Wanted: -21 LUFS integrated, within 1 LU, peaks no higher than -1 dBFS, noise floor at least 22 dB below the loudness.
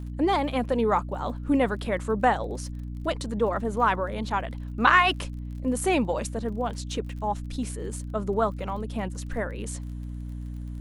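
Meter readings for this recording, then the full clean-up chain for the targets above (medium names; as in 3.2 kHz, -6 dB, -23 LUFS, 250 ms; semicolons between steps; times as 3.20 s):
tick rate 33 per s; hum 60 Hz; highest harmonic 300 Hz; hum level -32 dBFS; loudness -27.0 LUFS; peak level -5.0 dBFS; loudness target -21.0 LUFS
-> de-click; de-hum 60 Hz, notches 5; trim +6 dB; peak limiter -1 dBFS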